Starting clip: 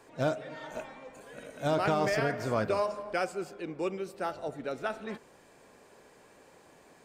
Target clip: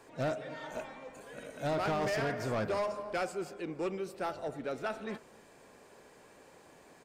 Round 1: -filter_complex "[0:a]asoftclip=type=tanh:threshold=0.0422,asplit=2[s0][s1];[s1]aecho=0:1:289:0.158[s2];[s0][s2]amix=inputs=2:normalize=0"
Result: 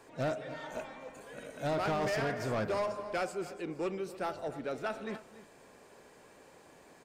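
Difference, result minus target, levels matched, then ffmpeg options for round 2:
echo-to-direct +9.5 dB
-filter_complex "[0:a]asoftclip=type=tanh:threshold=0.0422,asplit=2[s0][s1];[s1]aecho=0:1:289:0.0531[s2];[s0][s2]amix=inputs=2:normalize=0"

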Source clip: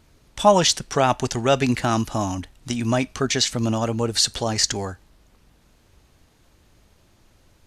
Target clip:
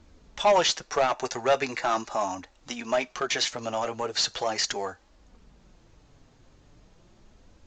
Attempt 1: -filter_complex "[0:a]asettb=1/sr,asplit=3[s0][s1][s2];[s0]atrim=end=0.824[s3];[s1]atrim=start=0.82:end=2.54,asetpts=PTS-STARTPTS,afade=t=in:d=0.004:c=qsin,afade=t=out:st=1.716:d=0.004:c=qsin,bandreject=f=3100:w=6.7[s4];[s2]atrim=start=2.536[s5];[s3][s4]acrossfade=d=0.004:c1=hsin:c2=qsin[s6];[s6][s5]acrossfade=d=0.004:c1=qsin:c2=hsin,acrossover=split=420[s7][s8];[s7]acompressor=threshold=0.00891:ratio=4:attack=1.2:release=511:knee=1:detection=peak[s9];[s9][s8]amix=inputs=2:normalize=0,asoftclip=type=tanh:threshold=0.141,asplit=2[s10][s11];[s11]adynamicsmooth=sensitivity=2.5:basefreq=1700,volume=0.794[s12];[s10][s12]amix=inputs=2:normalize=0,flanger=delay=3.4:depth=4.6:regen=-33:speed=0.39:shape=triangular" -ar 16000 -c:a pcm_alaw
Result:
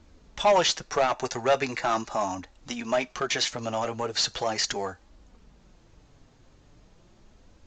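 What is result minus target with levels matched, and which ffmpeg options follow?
compression: peak gain reduction -6 dB
-filter_complex "[0:a]asettb=1/sr,asplit=3[s0][s1][s2];[s0]atrim=end=0.824[s3];[s1]atrim=start=0.82:end=2.54,asetpts=PTS-STARTPTS,afade=t=in:d=0.004:c=qsin,afade=t=out:st=1.716:d=0.004:c=qsin,bandreject=f=3100:w=6.7[s4];[s2]atrim=start=2.536[s5];[s3][s4]acrossfade=d=0.004:c1=hsin:c2=qsin[s6];[s6][s5]acrossfade=d=0.004:c1=qsin:c2=hsin,acrossover=split=420[s7][s8];[s7]acompressor=threshold=0.00355:ratio=4:attack=1.2:release=511:knee=1:detection=peak[s9];[s9][s8]amix=inputs=2:normalize=0,asoftclip=type=tanh:threshold=0.141,asplit=2[s10][s11];[s11]adynamicsmooth=sensitivity=2.5:basefreq=1700,volume=0.794[s12];[s10][s12]amix=inputs=2:normalize=0,flanger=delay=3.4:depth=4.6:regen=-33:speed=0.39:shape=triangular" -ar 16000 -c:a pcm_alaw

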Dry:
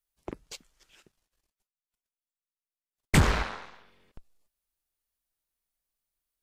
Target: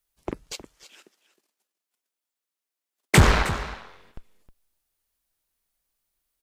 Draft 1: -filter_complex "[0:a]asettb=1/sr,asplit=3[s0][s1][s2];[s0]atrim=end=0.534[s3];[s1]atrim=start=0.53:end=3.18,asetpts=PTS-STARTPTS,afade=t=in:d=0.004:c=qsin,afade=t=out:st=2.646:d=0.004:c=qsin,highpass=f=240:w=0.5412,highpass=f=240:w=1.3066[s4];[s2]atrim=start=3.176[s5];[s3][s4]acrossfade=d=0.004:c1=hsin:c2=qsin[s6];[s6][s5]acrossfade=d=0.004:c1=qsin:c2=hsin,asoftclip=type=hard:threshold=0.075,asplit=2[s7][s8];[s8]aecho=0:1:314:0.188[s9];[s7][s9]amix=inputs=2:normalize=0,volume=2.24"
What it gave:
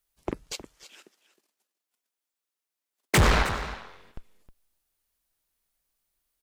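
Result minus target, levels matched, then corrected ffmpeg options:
hard clipper: distortion +16 dB
-filter_complex "[0:a]asettb=1/sr,asplit=3[s0][s1][s2];[s0]atrim=end=0.534[s3];[s1]atrim=start=0.53:end=3.18,asetpts=PTS-STARTPTS,afade=t=in:d=0.004:c=qsin,afade=t=out:st=2.646:d=0.004:c=qsin,highpass=f=240:w=0.5412,highpass=f=240:w=1.3066[s4];[s2]atrim=start=3.176[s5];[s3][s4]acrossfade=d=0.004:c1=hsin:c2=qsin[s6];[s6][s5]acrossfade=d=0.004:c1=qsin:c2=hsin,asoftclip=type=hard:threshold=0.211,asplit=2[s7][s8];[s8]aecho=0:1:314:0.188[s9];[s7][s9]amix=inputs=2:normalize=0,volume=2.24"

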